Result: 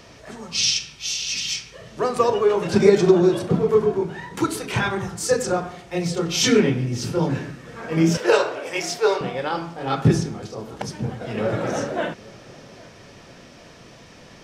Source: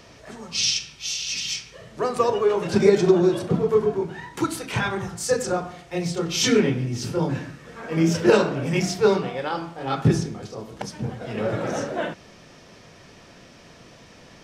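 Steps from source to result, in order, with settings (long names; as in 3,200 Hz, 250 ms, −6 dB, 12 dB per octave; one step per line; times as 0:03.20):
0:08.17–0:09.21: high-pass filter 430 Hz 24 dB per octave
feedback echo with a low-pass in the loop 808 ms, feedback 50%, level −22.5 dB
level +2 dB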